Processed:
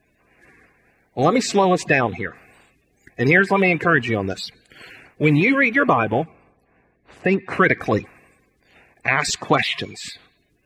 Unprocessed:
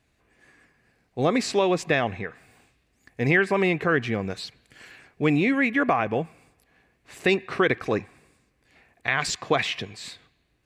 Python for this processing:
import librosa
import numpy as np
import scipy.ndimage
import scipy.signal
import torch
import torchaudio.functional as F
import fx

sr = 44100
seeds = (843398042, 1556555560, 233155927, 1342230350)

y = fx.spec_quant(x, sr, step_db=30)
y = fx.lowpass(y, sr, hz=1000.0, slope=6, at=(6.23, 7.46), fade=0.02)
y = y * 10.0 ** (6.0 / 20.0)